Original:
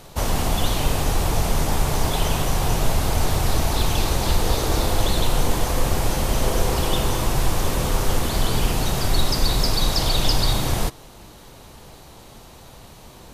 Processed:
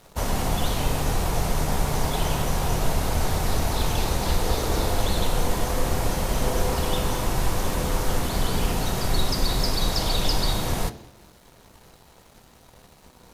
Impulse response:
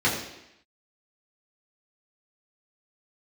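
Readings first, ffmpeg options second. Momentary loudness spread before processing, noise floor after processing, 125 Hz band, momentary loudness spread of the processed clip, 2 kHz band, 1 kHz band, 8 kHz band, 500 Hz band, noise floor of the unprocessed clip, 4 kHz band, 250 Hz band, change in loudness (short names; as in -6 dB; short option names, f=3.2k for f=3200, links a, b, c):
3 LU, -53 dBFS, -3.5 dB, 2 LU, -2.5 dB, -2.0 dB, -3.5 dB, -2.0 dB, -45 dBFS, -4.0 dB, -2.0 dB, -3.0 dB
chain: -filter_complex "[0:a]aeval=exprs='sgn(val(0))*max(abs(val(0))-0.00473,0)':c=same,asplit=2[a][b];[1:a]atrim=start_sample=2205[c];[b][c]afir=irnorm=-1:irlink=0,volume=-23.5dB[d];[a][d]amix=inputs=2:normalize=0,volume=-3dB"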